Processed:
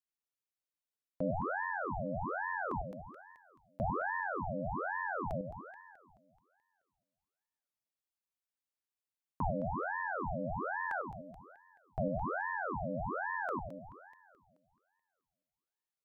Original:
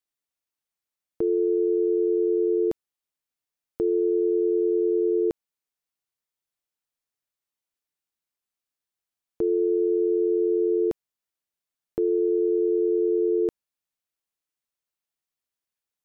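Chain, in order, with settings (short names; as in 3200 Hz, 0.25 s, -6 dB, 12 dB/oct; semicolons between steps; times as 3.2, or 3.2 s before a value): split-band echo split 440 Hz, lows 0.1 s, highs 0.215 s, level -7 dB; ring modulator with a swept carrier 770 Hz, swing 80%, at 1.2 Hz; gain -7 dB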